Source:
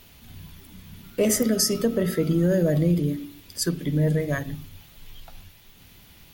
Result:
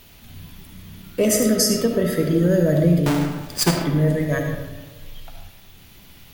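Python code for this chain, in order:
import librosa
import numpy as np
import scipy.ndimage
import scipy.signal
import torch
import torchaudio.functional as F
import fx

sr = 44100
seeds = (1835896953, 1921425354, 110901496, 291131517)

y = fx.halfwave_hold(x, sr, at=(3.06, 3.82))
y = fx.rev_freeverb(y, sr, rt60_s=1.3, hf_ratio=0.5, predelay_ms=30, drr_db=3.5)
y = y * librosa.db_to_amplitude(2.5)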